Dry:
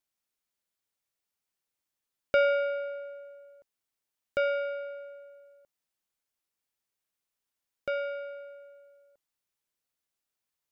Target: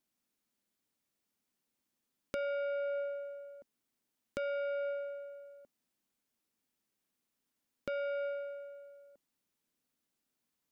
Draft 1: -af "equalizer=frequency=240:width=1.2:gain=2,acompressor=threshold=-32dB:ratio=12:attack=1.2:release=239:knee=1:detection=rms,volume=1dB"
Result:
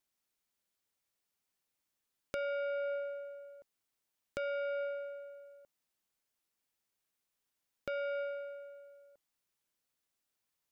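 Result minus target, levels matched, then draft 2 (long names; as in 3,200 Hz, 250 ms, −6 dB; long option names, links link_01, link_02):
250 Hz band −4.0 dB
-af "equalizer=frequency=240:width=1.2:gain=13.5,acompressor=threshold=-32dB:ratio=12:attack=1.2:release=239:knee=1:detection=rms,volume=1dB"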